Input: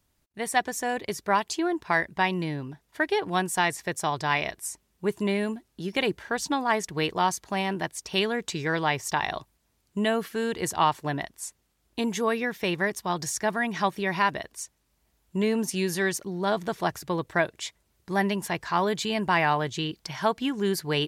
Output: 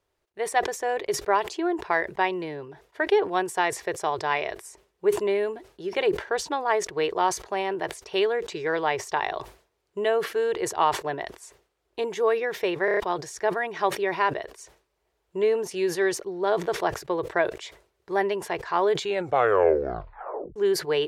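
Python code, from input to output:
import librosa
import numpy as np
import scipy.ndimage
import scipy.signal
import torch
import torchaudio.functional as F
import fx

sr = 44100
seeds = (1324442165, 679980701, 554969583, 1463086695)

y = fx.edit(x, sr, fx.stutter_over(start_s=12.85, slice_s=0.03, count=5),
    fx.tape_stop(start_s=18.97, length_s=1.59), tone=tone)
y = fx.lowpass(y, sr, hz=2500.0, slope=6)
y = fx.low_shelf_res(y, sr, hz=310.0, db=-8.5, q=3.0)
y = fx.sustainer(y, sr, db_per_s=140.0)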